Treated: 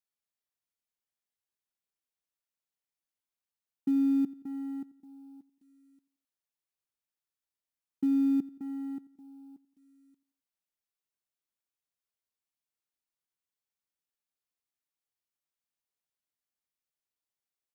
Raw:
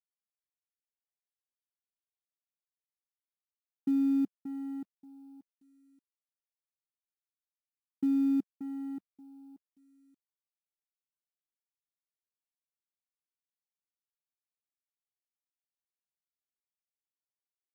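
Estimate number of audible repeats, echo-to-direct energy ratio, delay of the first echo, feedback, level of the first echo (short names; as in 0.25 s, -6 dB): 3, -18.5 dB, 87 ms, 42%, -19.5 dB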